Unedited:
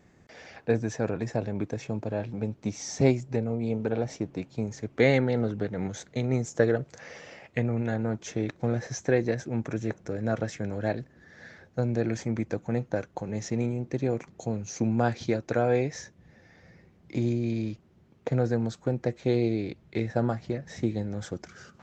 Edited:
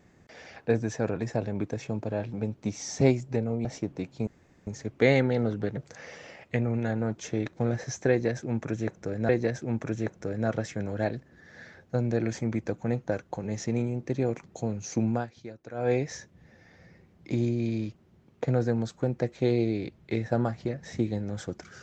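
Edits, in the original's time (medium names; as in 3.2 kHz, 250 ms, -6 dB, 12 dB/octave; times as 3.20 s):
3.65–4.03 s: delete
4.65 s: insert room tone 0.40 s
5.75–6.80 s: delete
9.13–10.32 s: loop, 2 plays
14.93–15.76 s: dip -15 dB, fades 0.18 s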